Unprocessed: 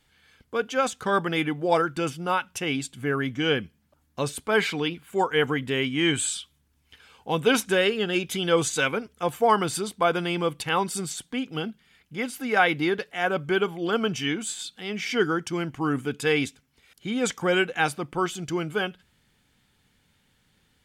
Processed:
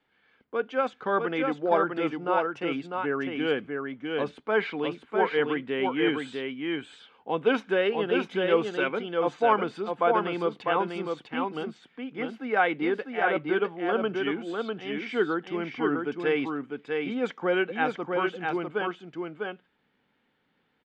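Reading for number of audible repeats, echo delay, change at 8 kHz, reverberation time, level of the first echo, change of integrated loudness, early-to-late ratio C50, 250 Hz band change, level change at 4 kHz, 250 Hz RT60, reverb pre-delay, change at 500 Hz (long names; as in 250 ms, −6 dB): 1, 650 ms, below −25 dB, no reverb audible, −4.0 dB, −2.5 dB, no reverb audible, −1.5 dB, −8.5 dB, no reverb audible, no reverb audible, 0.0 dB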